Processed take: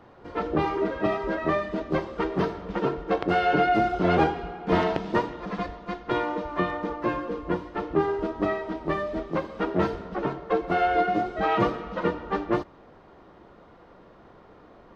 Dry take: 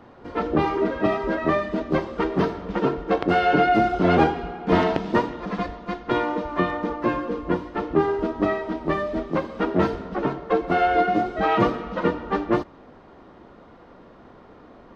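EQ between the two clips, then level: bell 250 Hz -6.5 dB 0.29 oct; -3.0 dB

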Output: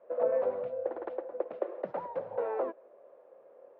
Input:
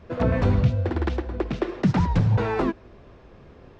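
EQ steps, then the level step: ladder band-pass 580 Hz, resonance 75%; air absorption 68 m; low shelf 370 Hz -7.5 dB; +4.5 dB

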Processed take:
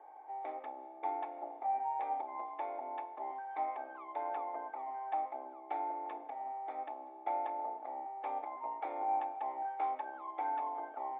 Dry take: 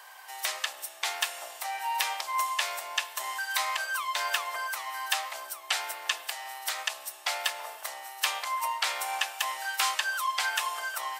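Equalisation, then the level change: vocal tract filter u; Butterworth band-stop 980 Hz, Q 5.1; +18.0 dB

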